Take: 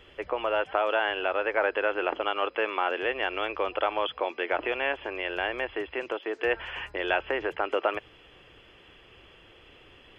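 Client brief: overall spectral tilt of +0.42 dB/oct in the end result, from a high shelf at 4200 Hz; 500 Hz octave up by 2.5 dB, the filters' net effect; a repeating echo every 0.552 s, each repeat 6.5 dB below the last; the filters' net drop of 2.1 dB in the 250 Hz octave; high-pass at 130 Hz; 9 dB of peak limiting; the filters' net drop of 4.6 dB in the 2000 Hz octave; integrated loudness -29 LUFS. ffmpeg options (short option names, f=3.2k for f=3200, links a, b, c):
-af "highpass=130,equalizer=f=250:t=o:g=-7.5,equalizer=f=500:t=o:g=5,equalizer=f=2k:t=o:g=-9,highshelf=f=4.2k:g=9,alimiter=limit=-20.5dB:level=0:latency=1,aecho=1:1:552|1104|1656|2208|2760|3312:0.473|0.222|0.105|0.0491|0.0231|0.0109,volume=2dB"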